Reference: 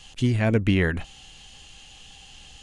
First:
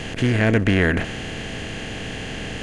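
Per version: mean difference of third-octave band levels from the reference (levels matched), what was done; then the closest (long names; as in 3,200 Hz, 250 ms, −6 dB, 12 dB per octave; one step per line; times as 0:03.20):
11.5 dB: compressor on every frequency bin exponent 0.4
dynamic equaliser 1,500 Hz, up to +4 dB, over −37 dBFS, Q 1.6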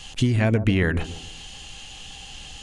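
4.5 dB: downward compressor 6 to 1, threshold −24 dBFS, peak gain reduction 9 dB
on a send: bucket-brigade delay 145 ms, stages 1,024, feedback 35%, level −12 dB
on the sum: level +7 dB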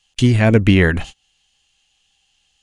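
8.5 dB: noise gate −38 dBFS, range −33 dB
one half of a high-frequency compander encoder only
level +8.5 dB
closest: second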